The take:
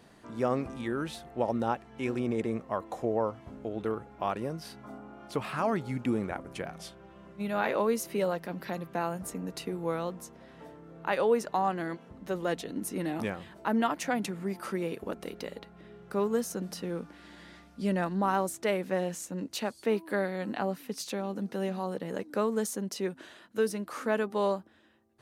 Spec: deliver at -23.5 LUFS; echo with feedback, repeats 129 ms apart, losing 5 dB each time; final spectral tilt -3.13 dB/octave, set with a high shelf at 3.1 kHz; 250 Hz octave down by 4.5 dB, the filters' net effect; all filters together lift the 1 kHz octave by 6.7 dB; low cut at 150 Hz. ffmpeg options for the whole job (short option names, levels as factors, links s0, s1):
-af "highpass=150,equalizer=f=250:t=o:g=-5.5,equalizer=f=1000:t=o:g=8,highshelf=f=3100:g=8.5,aecho=1:1:129|258|387|516|645|774|903:0.562|0.315|0.176|0.0988|0.0553|0.031|0.0173,volume=1.78"